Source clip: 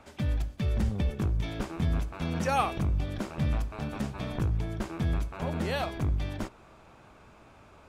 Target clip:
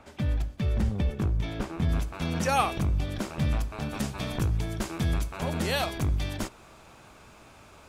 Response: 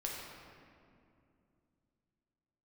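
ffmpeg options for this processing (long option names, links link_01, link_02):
-af "asetnsamples=nb_out_samples=441:pad=0,asendcmd='1.89 highshelf g 6.5;3.94 highshelf g 11.5',highshelf=frequency=3400:gain=-2,volume=1.5dB"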